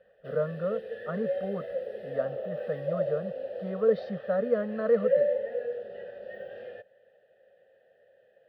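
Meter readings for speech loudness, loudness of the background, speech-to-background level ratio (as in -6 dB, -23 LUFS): -31.5 LUFS, -34.0 LUFS, 2.5 dB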